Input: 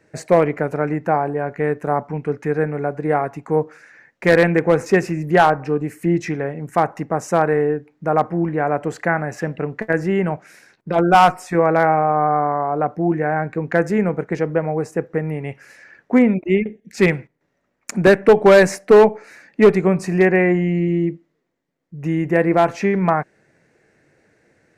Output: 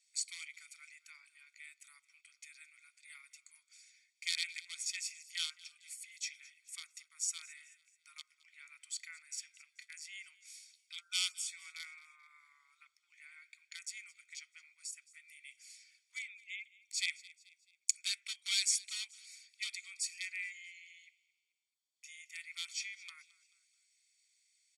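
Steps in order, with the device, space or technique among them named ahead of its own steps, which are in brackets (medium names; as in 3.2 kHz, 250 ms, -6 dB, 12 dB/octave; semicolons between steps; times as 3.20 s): inverse Chebyshev band-stop 170–720 Hz, stop band 80 dB; phone speaker on a table (cabinet simulation 410–8900 Hz, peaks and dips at 420 Hz -8 dB, 710 Hz -4 dB, 1 kHz -3 dB, 6 kHz -6 dB); treble shelf 4.9 kHz +10 dB; comb 0.9 ms, depth 87%; frequency-shifting echo 217 ms, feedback 43%, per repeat +33 Hz, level -20.5 dB; trim -5.5 dB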